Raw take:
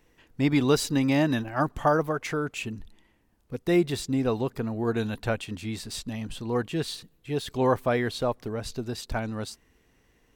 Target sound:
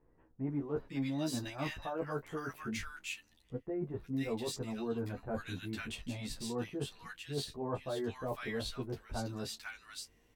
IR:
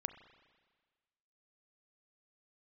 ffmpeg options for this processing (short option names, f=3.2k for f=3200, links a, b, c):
-filter_complex "[0:a]asplit=2[a][b];[b]adelay=22,volume=-13dB[c];[a][c]amix=inputs=2:normalize=0,acrossover=split=1400[d][e];[e]adelay=500[f];[d][f]amix=inputs=2:normalize=0,areverse,acompressor=threshold=-30dB:ratio=6,areverse,asplit=2[g][h];[h]adelay=11.5,afreqshift=1.9[i];[g][i]amix=inputs=2:normalize=1,volume=-1.5dB"